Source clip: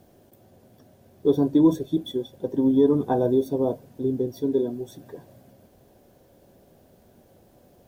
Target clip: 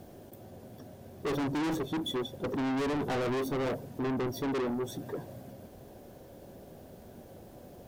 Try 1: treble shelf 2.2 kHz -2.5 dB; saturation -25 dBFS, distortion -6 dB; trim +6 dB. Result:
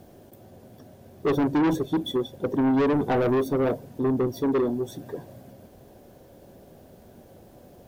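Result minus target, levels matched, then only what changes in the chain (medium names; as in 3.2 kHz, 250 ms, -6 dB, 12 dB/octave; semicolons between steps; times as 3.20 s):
saturation: distortion -4 dB
change: saturation -35.5 dBFS, distortion -2 dB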